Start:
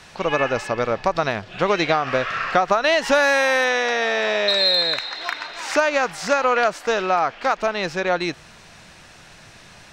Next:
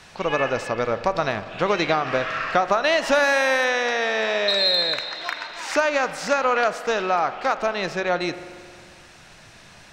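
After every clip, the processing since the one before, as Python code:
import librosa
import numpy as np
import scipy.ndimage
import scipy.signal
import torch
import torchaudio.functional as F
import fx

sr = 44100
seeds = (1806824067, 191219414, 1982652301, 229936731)

y = fx.rev_spring(x, sr, rt60_s=2.0, pass_ms=(45,), chirp_ms=50, drr_db=12.0)
y = y * librosa.db_to_amplitude(-2.0)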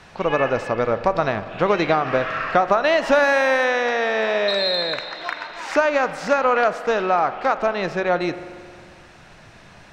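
y = fx.high_shelf(x, sr, hz=3000.0, db=-11.0)
y = y * librosa.db_to_amplitude(3.5)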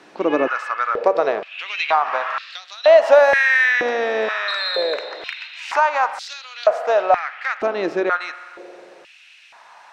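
y = fx.filter_held_highpass(x, sr, hz=2.1, low_hz=310.0, high_hz=3800.0)
y = y * librosa.db_to_amplitude(-2.5)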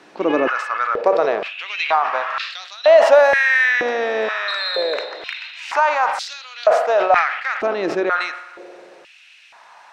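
y = fx.sustainer(x, sr, db_per_s=69.0)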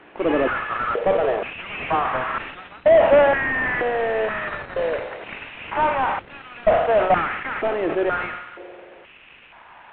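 y = fx.cvsd(x, sr, bps=16000)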